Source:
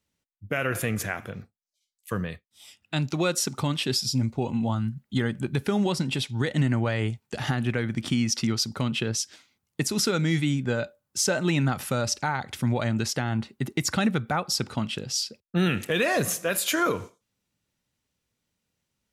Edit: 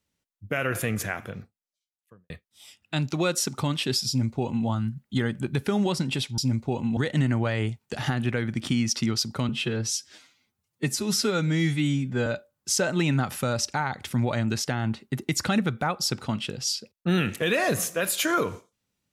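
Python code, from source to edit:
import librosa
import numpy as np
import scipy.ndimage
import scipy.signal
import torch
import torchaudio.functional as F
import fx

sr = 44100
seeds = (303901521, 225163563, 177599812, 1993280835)

y = fx.studio_fade_out(x, sr, start_s=1.36, length_s=0.94)
y = fx.edit(y, sr, fx.duplicate(start_s=4.08, length_s=0.59, to_s=6.38),
    fx.stretch_span(start_s=8.9, length_s=1.85, factor=1.5), tone=tone)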